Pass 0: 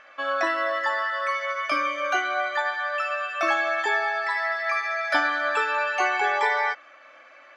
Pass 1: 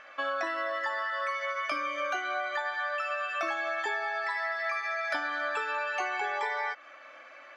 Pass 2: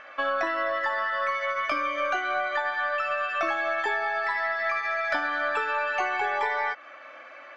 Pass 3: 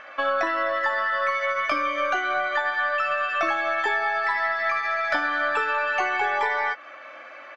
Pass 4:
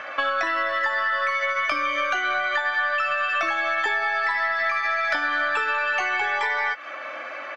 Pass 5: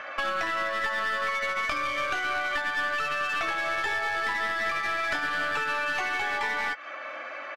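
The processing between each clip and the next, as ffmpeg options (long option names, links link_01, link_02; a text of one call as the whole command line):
ffmpeg -i in.wav -af "acompressor=threshold=-29dB:ratio=6" out.wav
ffmpeg -i in.wav -af "aemphasis=mode=reproduction:type=50kf,aeval=exprs='0.119*(cos(1*acos(clip(val(0)/0.119,-1,1)))-cos(1*PI/2))+0.00299*(cos(4*acos(clip(val(0)/0.119,-1,1)))-cos(4*PI/2))':channel_layout=same,volume=5.5dB" out.wav
ffmpeg -i in.wav -filter_complex "[0:a]asplit=2[link_01][link_02];[link_02]adelay=13,volume=-12.5dB[link_03];[link_01][link_03]amix=inputs=2:normalize=0,volume=3dB" out.wav
ffmpeg -i in.wav -filter_complex "[0:a]acrossover=split=120|1400[link_01][link_02][link_03];[link_01]acompressor=threshold=-58dB:ratio=4[link_04];[link_02]acompressor=threshold=-39dB:ratio=4[link_05];[link_03]acompressor=threshold=-32dB:ratio=4[link_06];[link_04][link_05][link_06]amix=inputs=3:normalize=0,volume=8dB" out.wav
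ffmpeg -i in.wav -af "aeval=exprs='clip(val(0),-1,0.0562)':channel_layout=same,aresample=32000,aresample=44100,volume=-3.5dB" out.wav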